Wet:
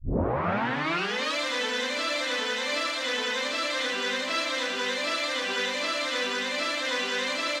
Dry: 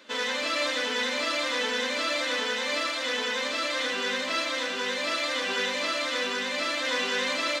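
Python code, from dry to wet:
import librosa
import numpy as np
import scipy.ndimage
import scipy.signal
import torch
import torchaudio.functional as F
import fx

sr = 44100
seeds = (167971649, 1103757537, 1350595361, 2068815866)

y = fx.tape_start_head(x, sr, length_s=1.37)
y = fx.rider(y, sr, range_db=10, speed_s=0.5)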